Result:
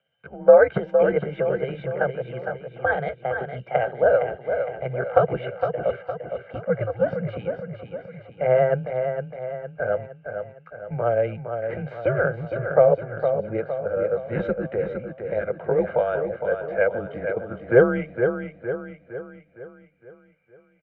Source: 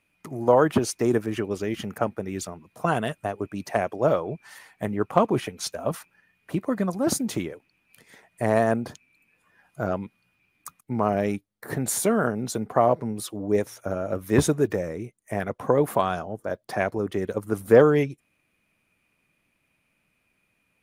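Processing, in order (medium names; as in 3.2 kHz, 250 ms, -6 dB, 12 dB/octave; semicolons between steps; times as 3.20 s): pitch bend over the whole clip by +4.5 st ending unshifted; comb 1.3 ms, depth 75%; small resonant body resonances 270/620/1700 Hz, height 12 dB, ringing for 30 ms; on a send: feedback delay 461 ms, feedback 49%, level -7 dB; on the sum: mistuned SSB -120 Hz 290–3000 Hz; trim -5 dB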